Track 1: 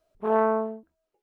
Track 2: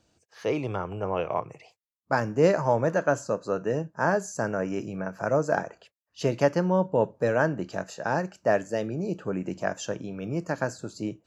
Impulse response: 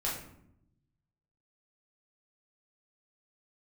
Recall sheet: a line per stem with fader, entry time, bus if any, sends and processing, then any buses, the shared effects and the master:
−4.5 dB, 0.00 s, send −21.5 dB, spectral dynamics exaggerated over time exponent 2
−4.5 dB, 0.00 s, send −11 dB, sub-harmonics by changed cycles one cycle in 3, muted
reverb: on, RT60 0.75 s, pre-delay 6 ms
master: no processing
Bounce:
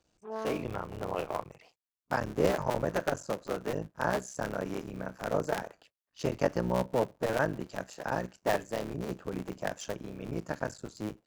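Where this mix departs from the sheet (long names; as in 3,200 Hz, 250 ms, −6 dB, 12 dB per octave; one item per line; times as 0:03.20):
stem 1 −4.5 dB → −15.5 dB
stem 2: send off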